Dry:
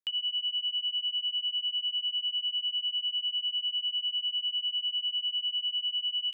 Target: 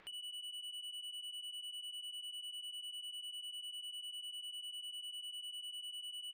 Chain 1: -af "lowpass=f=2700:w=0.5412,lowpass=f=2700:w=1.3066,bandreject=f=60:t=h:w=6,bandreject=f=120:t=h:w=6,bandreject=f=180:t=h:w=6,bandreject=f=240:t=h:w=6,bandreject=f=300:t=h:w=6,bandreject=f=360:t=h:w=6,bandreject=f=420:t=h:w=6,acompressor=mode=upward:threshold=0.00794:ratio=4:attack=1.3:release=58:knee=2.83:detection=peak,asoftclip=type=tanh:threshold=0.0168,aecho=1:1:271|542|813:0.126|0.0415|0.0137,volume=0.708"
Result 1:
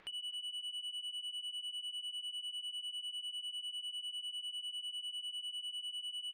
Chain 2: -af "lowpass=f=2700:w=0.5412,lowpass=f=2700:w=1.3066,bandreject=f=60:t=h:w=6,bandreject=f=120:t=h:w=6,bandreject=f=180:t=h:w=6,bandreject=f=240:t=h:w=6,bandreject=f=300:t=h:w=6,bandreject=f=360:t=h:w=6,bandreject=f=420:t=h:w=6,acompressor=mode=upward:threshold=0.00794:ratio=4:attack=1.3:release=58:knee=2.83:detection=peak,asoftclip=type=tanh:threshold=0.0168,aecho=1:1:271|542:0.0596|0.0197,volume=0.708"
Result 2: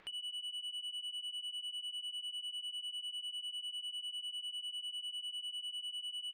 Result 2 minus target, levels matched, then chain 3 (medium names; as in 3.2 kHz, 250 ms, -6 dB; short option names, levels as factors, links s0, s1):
saturation: distortion -6 dB
-af "lowpass=f=2700:w=0.5412,lowpass=f=2700:w=1.3066,bandreject=f=60:t=h:w=6,bandreject=f=120:t=h:w=6,bandreject=f=180:t=h:w=6,bandreject=f=240:t=h:w=6,bandreject=f=300:t=h:w=6,bandreject=f=360:t=h:w=6,bandreject=f=420:t=h:w=6,acompressor=mode=upward:threshold=0.00794:ratio=4:attack=1.3:release=58:knee=2.83:detection=peak,asoftclip=type=tanh:threshold=0.00841,aecho=1:1:271|542:0.0596|0.0197,volume=0.708"